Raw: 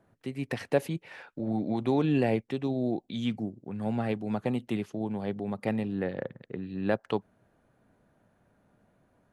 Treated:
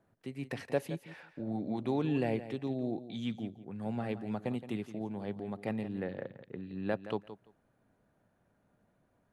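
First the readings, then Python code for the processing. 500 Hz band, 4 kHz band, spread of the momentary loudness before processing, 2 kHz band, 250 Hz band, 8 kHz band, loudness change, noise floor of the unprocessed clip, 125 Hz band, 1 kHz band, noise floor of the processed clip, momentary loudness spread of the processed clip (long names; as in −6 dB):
−6.0 dB, −6.0 dB, 11 LU, −6.0 dB, −6.0 dB, can't be measured, −6.0 dB, −69 dBFS, −6.0 dB, −6.0 dB, −74 dBFS, 11 LU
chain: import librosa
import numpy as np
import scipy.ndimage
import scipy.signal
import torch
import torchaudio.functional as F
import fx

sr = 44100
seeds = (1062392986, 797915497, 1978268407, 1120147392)

y = fx.echo_feedback(x, sr, ms=170, feedback_pct=16, wet_db=-13.0)
y = y * 10.0 ** (-6.0 / 20.0)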